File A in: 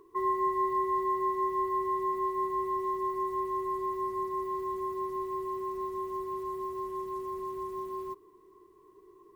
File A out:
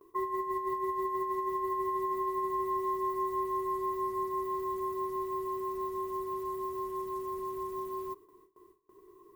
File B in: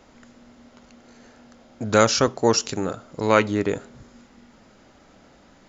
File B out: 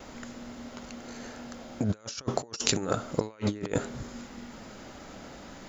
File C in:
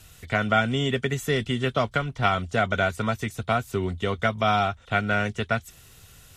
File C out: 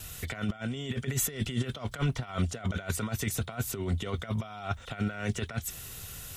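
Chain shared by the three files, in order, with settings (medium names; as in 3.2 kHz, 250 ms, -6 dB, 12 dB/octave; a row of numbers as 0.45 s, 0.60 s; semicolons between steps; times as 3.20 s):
gate with hold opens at -49 dBFS; treble shelf 11 kHz +11 dB; compressor with a negative ratio -30 dBFS, ratio -0.5; trim -1 dB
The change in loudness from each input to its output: -1.5 LU, -12.0 LU, -8.0 LU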